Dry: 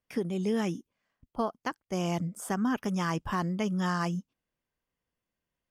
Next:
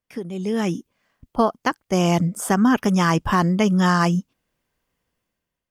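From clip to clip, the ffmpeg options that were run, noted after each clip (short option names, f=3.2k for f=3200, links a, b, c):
-af "dynaudnorm=f=260:g=5:m=12dB"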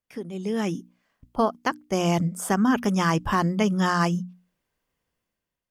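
-af "bandreject=f=60:t=h:w=6,bandreject=f=120:t=h:w=6,bandreject=f=180:t=h:w=6,bandreject=f=240:t=h:w=6,bandreject=f=300:t=h:w=6,volume=-3.5dB"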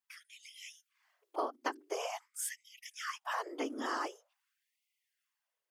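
-af "afftfilt=real='hypot(re,im)*cos(2*PI*random(0))':imag='hypot(re,im)*sin(2*PI*random(1))':win_size=512:overlap=0.75,acompressor=threshold=-36dB:ratio=6,afftfilt=real='re*gte(b*sr/1024,220*pow(2000/220,0.5+0.5*sin(2*PI*0.46*pts/sr)))':imag='im*gte(b*sr/1024,220*pow(2000/220,0.5+0.5*sin(2*PI*0.46*pts/sr)))':win_size=1024:overlap=0.75,volume=4.5dB"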